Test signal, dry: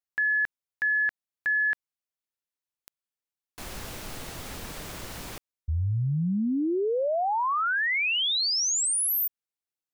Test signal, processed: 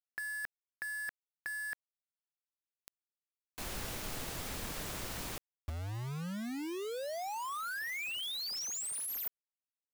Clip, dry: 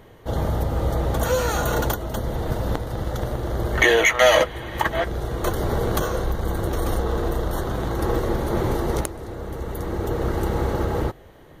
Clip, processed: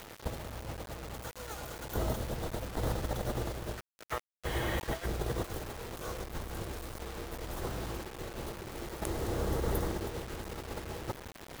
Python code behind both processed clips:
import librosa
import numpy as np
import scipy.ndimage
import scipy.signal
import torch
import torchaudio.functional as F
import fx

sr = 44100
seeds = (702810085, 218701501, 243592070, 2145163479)

y = fx.over_compress(x, sr, threshold_db=-29.0, ratio=-0.5)
y = fx.quant_dither(y, sr, seeds[0], bits=6, dither='none')
y = y * 10.0 ** (-7.5 / 20.0)